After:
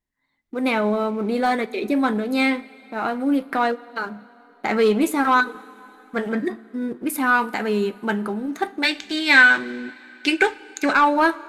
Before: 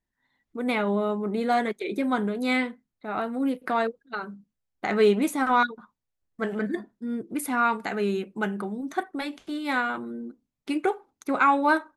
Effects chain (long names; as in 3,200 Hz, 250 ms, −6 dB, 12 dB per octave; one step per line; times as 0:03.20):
leveller curve on the samples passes 1
gain on a spectral selection 0:09.20–0:11.38, 1,400–8,200 Hz +12 dB
wrong playback speed 24 fps film run at 25 fps
coupled-rooms reverb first 0.23 s, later 3.4 s, from −18 dB, DRR 13.5 dB
level +1 dB